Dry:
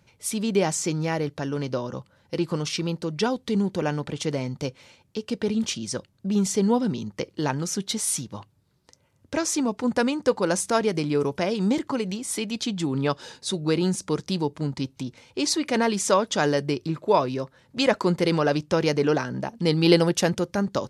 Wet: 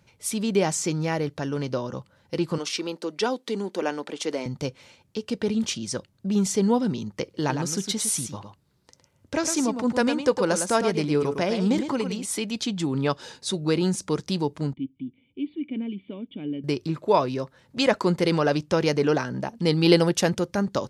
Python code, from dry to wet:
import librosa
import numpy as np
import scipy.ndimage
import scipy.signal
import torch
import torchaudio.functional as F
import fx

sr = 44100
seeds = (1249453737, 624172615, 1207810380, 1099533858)

y = fx.highpass(x, sr, hz=260.0, slope=24, at=(2.58, 4.46))
y = fx.echo_single(y, sr, ms=108, db=-8.0, at=(7.34, 12.24), fade=0.02)
y = fx.formant_cascade(y, sr, vowel='i', at=(14.73, 16.64))